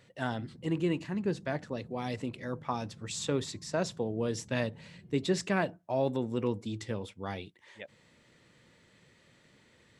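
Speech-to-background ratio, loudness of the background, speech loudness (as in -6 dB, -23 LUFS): 19.5 dB, -53.5 LUFS, -34.0 LUFS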